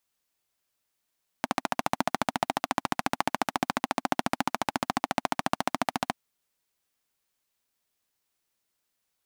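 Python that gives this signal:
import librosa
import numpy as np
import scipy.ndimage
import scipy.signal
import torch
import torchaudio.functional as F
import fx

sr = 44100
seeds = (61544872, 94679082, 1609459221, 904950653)

y = fx.engine_single(sr, seeds[0], length_s=4.7, rpm=1700, resonances_hz=(260.0, 750.0))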